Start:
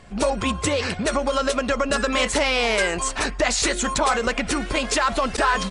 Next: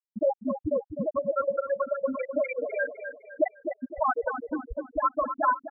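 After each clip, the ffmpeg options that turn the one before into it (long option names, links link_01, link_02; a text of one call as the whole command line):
ffmpeg -i in.wav -af "afftfilt=real='re*gte(hypot(re,im),0.631)':imag='im*gte(hypot(re,im),0.631)':win_size=1024:overlap=0.75,aecho=1:1:254|508|762|1016:0.355|0.131|0.0486|0.018,volume=-1dB" out.wav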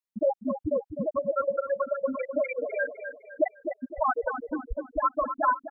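ffmpeg -i in.wav -af "asubboost=boost=2:cutoff=61" out.wav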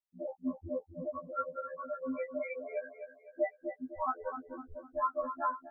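ffmpeg -i in.wav -af "afftfilt=real='re*2*eq(mod(b,4),0)':imag='im*2*eq(mod(b,4),0)':win_size=2048:overlap=0.75,volume=-5.5dB" out.wav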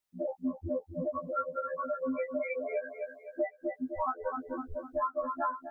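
ffmpeg -i in.wav -af "acompressor=threshold=-39dB:ratio=3,volume=8dB" out.wav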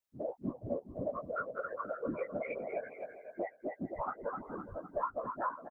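ffmpeg -i in.wav -af "afftfilt=real='hypot(re,im)*cos(2*PI*random(0))':imag='hypot(re,im)*sin(2*PI*random(1))':win_size=512:overlap=0.75,aecho=1:1:413:0.168,volume=1.5dB" out.wav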